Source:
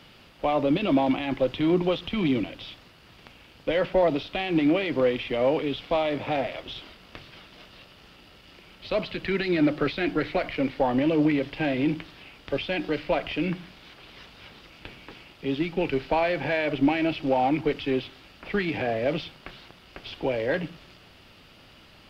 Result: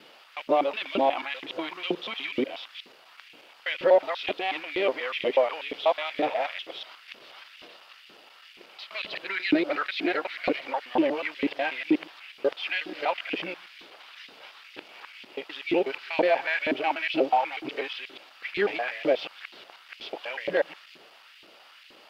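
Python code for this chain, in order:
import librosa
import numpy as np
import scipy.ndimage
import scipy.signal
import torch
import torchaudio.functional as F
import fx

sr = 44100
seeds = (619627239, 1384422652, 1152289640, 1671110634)

y = fx.local_reverse(x, sr, ms=122.0)
y = fx.filter_lfo_highpass(y, sr, shape='saw_up', hz=2.1, low_hz=300.0, high_hz=2700.0, q=1.6)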